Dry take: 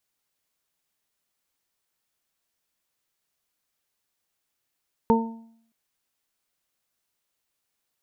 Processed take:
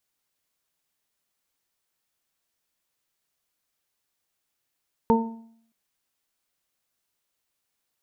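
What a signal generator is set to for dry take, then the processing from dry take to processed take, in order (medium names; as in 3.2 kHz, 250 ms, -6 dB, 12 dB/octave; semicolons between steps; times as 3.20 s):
additive tone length 0.62 s, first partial 227 Hz, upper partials -0.5/-19.5/-1 dB, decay 0.67 s, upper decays 0.38/0.66/0.44 s, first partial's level -16.5 dB
de-hum 211 Hz, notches 13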